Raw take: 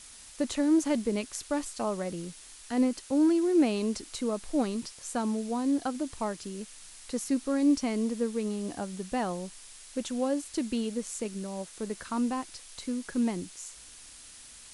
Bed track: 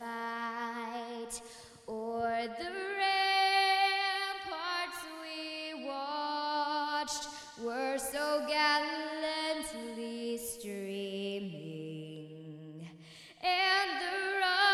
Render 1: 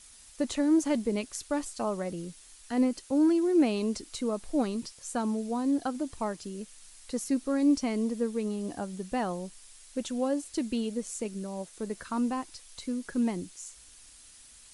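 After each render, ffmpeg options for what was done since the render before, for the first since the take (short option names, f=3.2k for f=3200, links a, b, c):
-af "afftdn=nr=6:nf=-50"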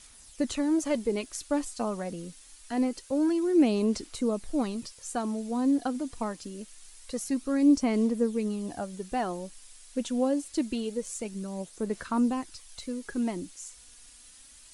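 -af "aphaser=in_gain=1:out_gain=1:delay=4.2:decay=0.37:speed=0.25:type=sinusoidal"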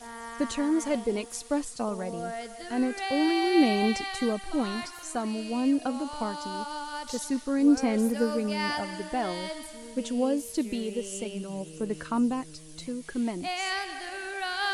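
-filter_complex "[1:a]volume=-2.5dB[a];[0:a][a]amix=inputs=2:normalize=0"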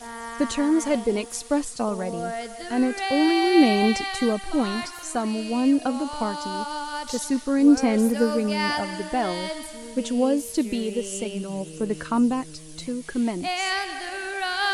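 -af "volume=5dB"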